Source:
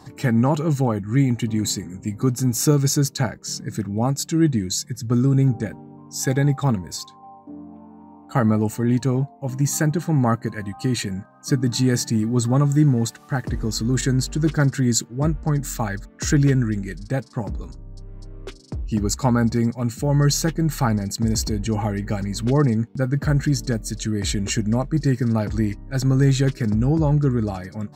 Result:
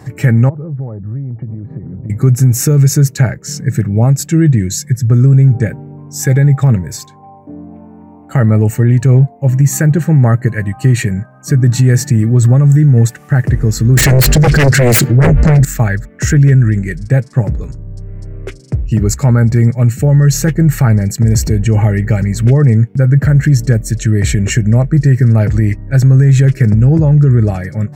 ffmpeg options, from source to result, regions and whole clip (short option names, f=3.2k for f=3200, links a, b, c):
-filter_complex "[0:a]asettb=1/sr,asplit=3[a][b][c];[a]atrim=end=0.494[d];[b]atrim=start=0.49:end=2.1,asetpts=PTS-STARTPTS,afade=t=in:d=0.004:c=qsin,afade=t=out:st=1.606:d=0.004:c=qsin,lowpass=f=1.1k:w=0.5412,lowpass=f=1.1k:w=1.3066,acompressor=threshold=-33dB:ratio=12:attack=3.2:release=140:knee=1:detection=peak[e];[c]atrim=start=2.096[f];[d][e]acrossfade=d=0.004:c1=hsin:c2=qsin[g];[g][f]acrossfade=d=0.004:c1=qsin:c2=hsin,asettb=1/sr,asplit=3[h][i][j];[h]atrim=end=13.974[k];[i]atrim=start=13.97:end=15.65,asetpts=PTS-STARTPTS,afade=t=in:d=0.004:c=qsin,afade=t=out:st=1.676:d=0.004:c=qsin,equalizer=f=4.4k:t=o:w=0.62:g=11,aeval=exprs='0.668*sin(PI/2*6.31*val(0)/0.668)':c=same[l];[j]atrim=start=15.646[m];[k][l]acrossfade=d=0.004:c1=hsin:c2=qsin[n];[n][m]acrossfade=d=0.004:c1=qsin:c2=hsin,equalizer=f=125:t=o:w=1:g=10,equalizer=f=250:t=o:w=1:g=-5,equalizer=f=500:t=o:w=1:g=4,equalizer=f=1k:t=o:w=1:g=-8,equalizer=f=2k:t=o:w=1:g=8,equalizer=f=4k:t=o:w=1:g=-11,alimiter=level_in=10dB:limit=-1dB:release=50:level=0:latency=1,volume=-1dB"